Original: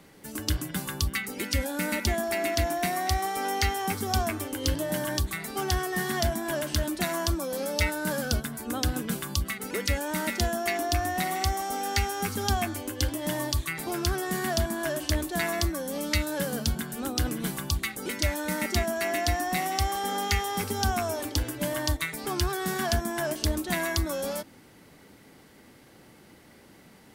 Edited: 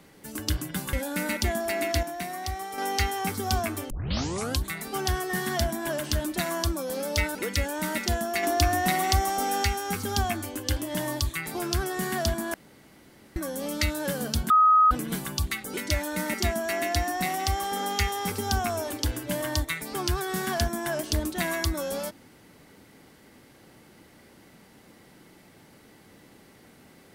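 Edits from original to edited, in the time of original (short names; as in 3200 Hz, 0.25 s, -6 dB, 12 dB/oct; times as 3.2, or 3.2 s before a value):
0.93–1.56 cut
2.66–3.41 gain -6 dB
4.53 tape start 0.72 s
7.98–9.67 cut
10.75–11.96 gain +4 dB
14.86–15.68 room tone
16.82–17.23 bleep 1260 Hz -14.5 dBFS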